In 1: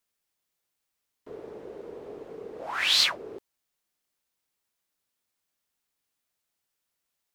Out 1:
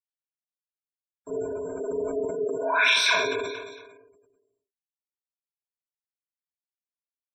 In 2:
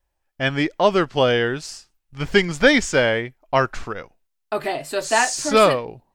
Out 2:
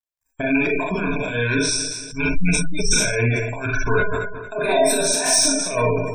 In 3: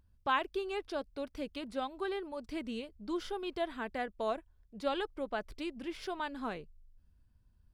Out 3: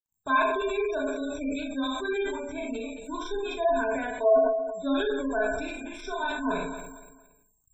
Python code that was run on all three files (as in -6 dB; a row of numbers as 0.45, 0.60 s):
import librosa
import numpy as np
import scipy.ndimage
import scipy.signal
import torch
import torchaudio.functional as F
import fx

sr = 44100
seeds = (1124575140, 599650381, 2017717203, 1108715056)

p1 = fx.rattle_buzz(x, sr, strikes_db=-25.0, level_db=-16.0)
p2 = fx.ripple_eq(p1, sr, per_octave=1.6, db=18)
p3 = fx.over_compress(p2, sr, threshold_db=-22.0, ratio=-0.5)
p4 = 10.0 ** (-17.0 / 20.0) * np.tanh(p3 / 10.0 ** (-17.0 / 20.0))
p5 = p4 + 10.0 ** (-52.0 / 20.0) * np.sin(2.0 * np.pi * 7500.0 * np.arange(len(p4)) / sr)
p6 = np.sign(p5) * np.maximum(np.abs(p5) - 10.0 ** (-48.0 / 20.0), 0.0)
p7 = p6 + fx.echo_feedback(p6, sr, ms=228, feedback_pct=34, wet_db=-14.0, dry=0)
p8 = fx.rev_schroeder(p7, sr, rt60_s=0.55, comb_ms=26, drr_db=-3.5)
p9 = fx.spec_gate(p8, sr, threshold_db=-25, keep='strong')
y = fx.sustainer(p9, sr, db_per_s=42.0)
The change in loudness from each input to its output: -1.5, -0.5, +9.5 LU